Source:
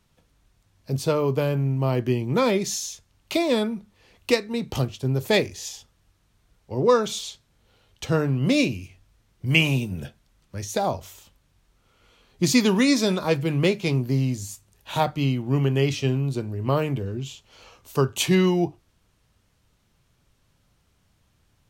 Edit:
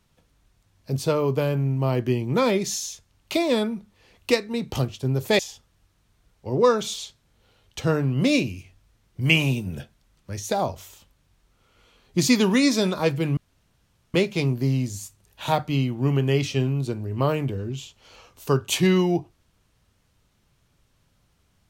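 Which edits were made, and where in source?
0:05.39–0:05.64: remove
0:13.62: splice in room tone 0.77 s

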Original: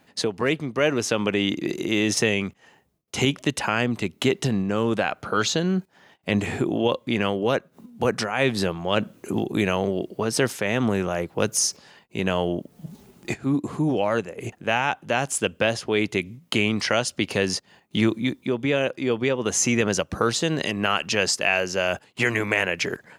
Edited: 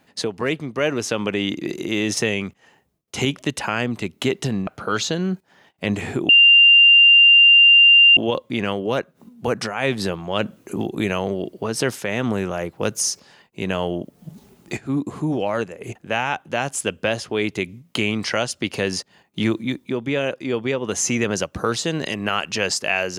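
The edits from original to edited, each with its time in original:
0:04.67–0:05.12: remove
0:06.74: insert tone 2,790 Hz −7.5 dBFS 1.88 s

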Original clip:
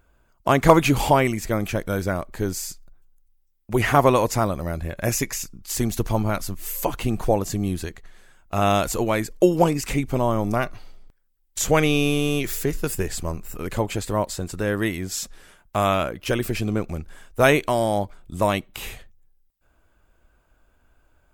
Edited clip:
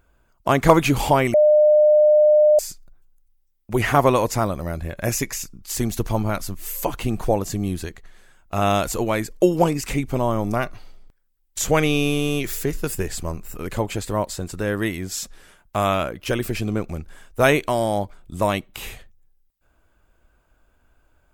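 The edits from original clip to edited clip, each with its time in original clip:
0:01.34–0:02.59: beep over 604 Hz −10.5 dBFS

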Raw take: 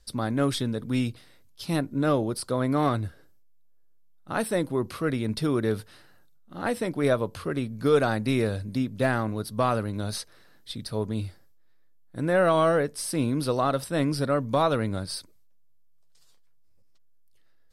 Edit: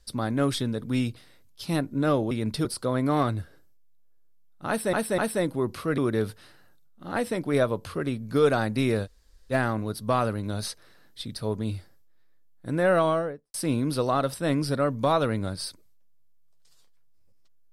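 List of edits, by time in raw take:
0:04.34–0:04.59: repeat, 3 plays
0:05.14–0:05.48: move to 0:02.31
0:08.55–0:09.02: fill with room tone, crossfade 0.06 s
0:12.42–0:13.04: fade out and dull

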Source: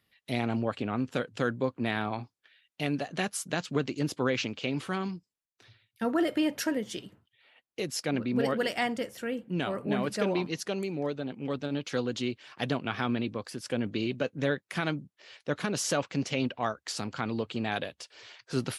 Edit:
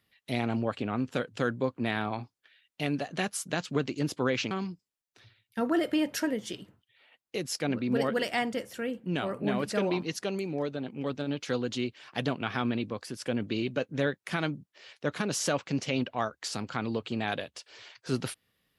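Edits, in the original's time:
0:04.51–0:04.95: remove

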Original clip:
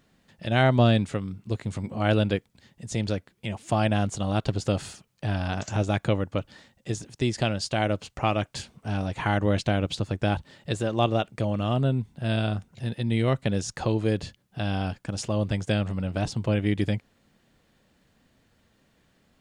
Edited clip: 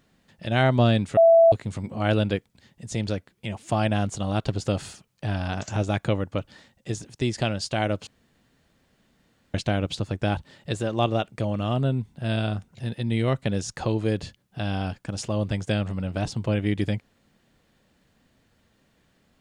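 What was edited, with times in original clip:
0:01.17–0:01.52: beep over 664 Hz −11 dBFS
0:08.07–0:09.54: fill with room tone

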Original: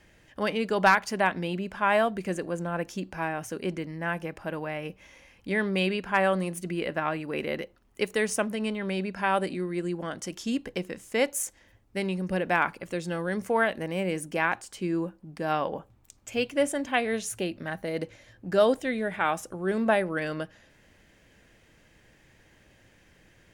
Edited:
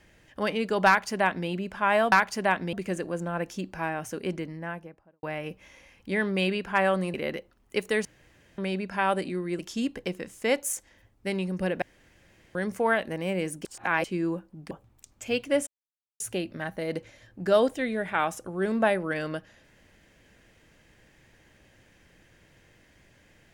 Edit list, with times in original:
0:00.87–0:01.48: duplicate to 0:02.12
0:03.71–0:04.62: fade out and dull
0:06.53–0:07.39: remove
0:08.30–0:08.83: fill with room tone
0:09.84–0:10.29: remove
0:12.52–0:13.25: fill with room tone
0:14.35–0:14.74: reverse
0:15.41–0:15.77: remove
0:16.73–0:17.26: silence

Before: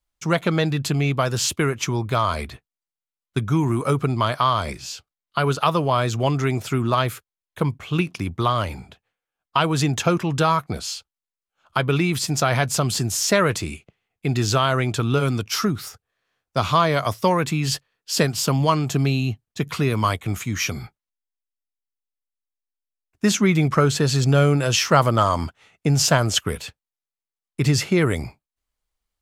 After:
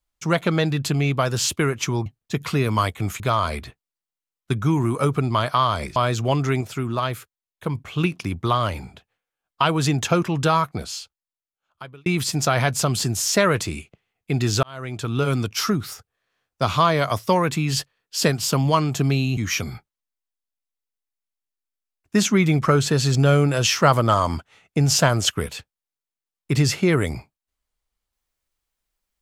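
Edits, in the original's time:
0:04.82–0:05.91: remove
0:06.56–0:07.70: clip gain −4 dB
0:10.52–0:12.01: fade out
0:14.58–0:15.29: fade in
0:19.32–0:20.46: move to 0:02.06

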